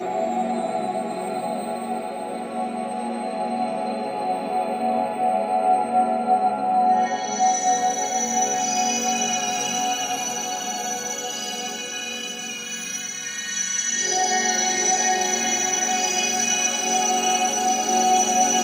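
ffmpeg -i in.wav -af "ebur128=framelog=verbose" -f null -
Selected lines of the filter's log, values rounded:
Integrated loudness:
  I:         -22.1 LUFS
  Threshold: -32.1 LUFS
Loudness range:
  LRA:         7.4 LU
  Threshold: -42.2 LUFS
  LRA low:   -27.0 LUFS
  LRA high:  -19.5 LUFS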